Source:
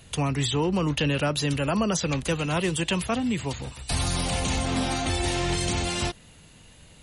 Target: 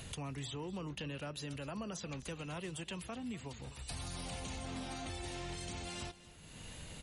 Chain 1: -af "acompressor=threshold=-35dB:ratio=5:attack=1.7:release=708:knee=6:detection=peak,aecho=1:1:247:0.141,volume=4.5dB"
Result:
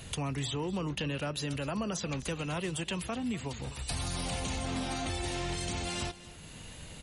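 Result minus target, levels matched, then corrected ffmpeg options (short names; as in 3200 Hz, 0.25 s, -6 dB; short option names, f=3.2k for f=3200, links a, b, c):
compressor: peak gain reduction -8.5 dB
-af "acompressor=threshold=-45.5dB:ratio=5:attack=1.7:release=708:knee=6:detection=peak,aecho=1:1:247:0.141,volume=4.5dB"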